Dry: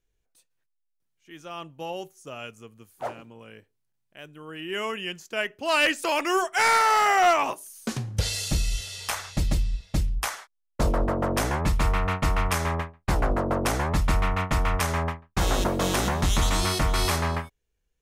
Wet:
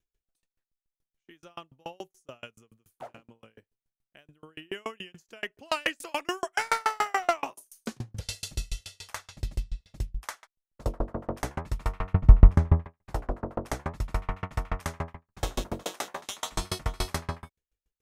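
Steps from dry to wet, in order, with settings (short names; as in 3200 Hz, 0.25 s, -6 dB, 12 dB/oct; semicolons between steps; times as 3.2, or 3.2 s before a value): 12.13–12.85 tilt -4.5 dB/oct; 15.83–16.52 HPF 450 Hz 12 dB/oct; dB-ramp tremolo decaying 7 Hz, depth 37 dB; gain +1 dB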